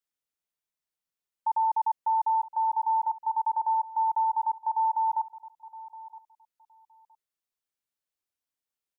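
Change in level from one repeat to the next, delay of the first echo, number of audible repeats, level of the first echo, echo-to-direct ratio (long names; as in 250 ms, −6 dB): −16.0 dB, 967 ms, 2, −18.0 dB, −18.0 dB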